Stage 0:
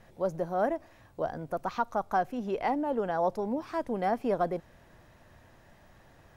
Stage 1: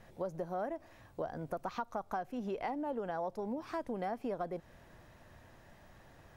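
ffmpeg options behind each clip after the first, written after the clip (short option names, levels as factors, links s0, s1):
-af "acompressor=threshold=0.02:ratio=5,volume=0.891"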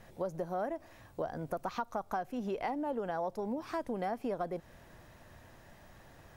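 -af "highshelf=f=6300:g=4.5,volume=1.26"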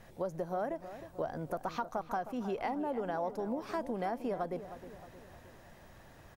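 -filter_complex "[0:a]asplit=2[s0][s1];[s1]adelay=312,lowpass=f=2000:p=1,volume=0.251,asplit=2[s2][s3];[s3]adelay=312,lowpass=f=2000:p=1,volume=0.53,asplit=2[s4][s5];[s5]adelay=312,lowpass=f=2000:p=1,volume=0.53,asplit=2[s6][s7];[s7]adelay=312,lowpass=f=2000:p=1,volume=0.53,asplit=2[s8][s9];[s9]adelay=312,lowpass=f=2000:p=1,volume=0.53,asplit=2[s10][s11];[s11]adelay=312,lowpass=f=2000:p=1,volume=0.53[s12];[s0][s2][s4][s6][s8][s10][s12]amix=inputs=7:normalize=0"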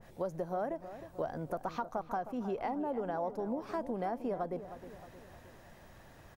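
-af "adynamicequalizer=threshold=0.00282:dfrequency=1500:dqfactor=0.7:tfrequency=1500:tqfactor=0.7:attack=5:release=100:ratio=0.375:range=3:mode=cutabove:tftype=highshelf"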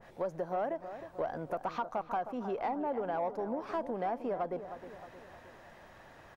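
-filter_complex "[0:a]asplit=2[s0][s1];[s1]highpass=f=720:p=1,volume=3.55,asoftclip=type=tanh:threshold=0.0708[s2];[s0][s2]amix=inputs=2:normalize=0,lowpass=f=2100:p=1,volume=0.501"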